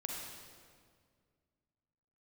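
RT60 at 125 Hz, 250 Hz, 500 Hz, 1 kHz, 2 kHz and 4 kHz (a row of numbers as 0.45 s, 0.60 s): 2.6 s, 2.5 s, 2.2 s, 1.8 s, 1.6 s, 1.5 s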